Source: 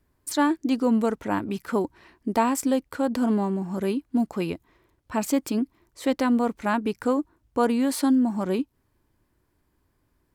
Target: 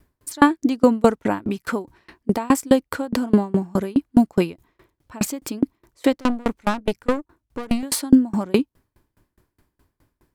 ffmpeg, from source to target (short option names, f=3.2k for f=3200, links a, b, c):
-filter_complex "[0:a]asettb=1/sr,asplit=3[a][b][c];[a]atrim=end=6.124[d];[b]atrim=start=6.12:end=7.83,asetpts=PTS-STARTPTS,afade=t=in:d=0.004:c=qsin,afade=t=out:st=1.706:d=0.004:c=qsin,aeval=exprs='(tanh(15.8*val(0)+0.6)-tanh(0.6))/15.8':c=same[e];[c]atrim=start=7.826[f];[d][e]acrossfade=d=0.004:c1=hsin:c2=qsin[g];[g][f]acrossfade=d=0.004:c1=qsin:c2=hsin,alimiter=level_in=13dB:limit=-1dB:release=50:level=0:latency=1,aeval=exprs='val(0)*pow(10,-30*if(lt(mod(4.8*n/s,1),2*abs(4.8)/1000),1-mod(4.8*n/s,1)/(2*abs(4.8)/1000),(mod(4.8*n/s,1)-2*abs(4.8)/1000)/(1-2*abs(4.8)/1000))/20)':c=same"